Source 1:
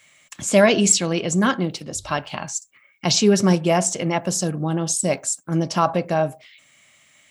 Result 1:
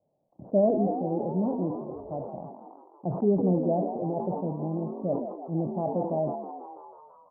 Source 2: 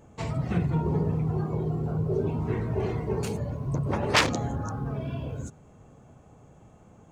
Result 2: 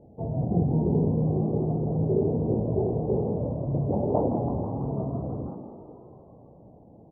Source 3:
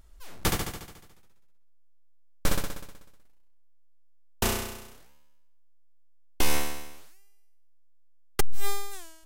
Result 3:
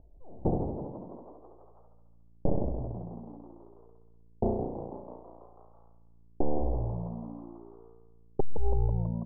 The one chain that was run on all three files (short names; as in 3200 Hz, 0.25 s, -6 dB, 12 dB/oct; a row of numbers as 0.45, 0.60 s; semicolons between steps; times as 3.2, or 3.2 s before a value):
FFT order left unsorted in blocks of 16 samples; steep low-pass 780 Hz 48 dB/oct; low shelf 100 Hz -8.5 dB; frequency-shifting echo 0.164 s, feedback 64%, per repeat +57 Hz, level -9.5 dB; sustainer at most 64 dB/s; normalise peaks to -12 dBFS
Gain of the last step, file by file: -6.0, +4.0, +3.5 dB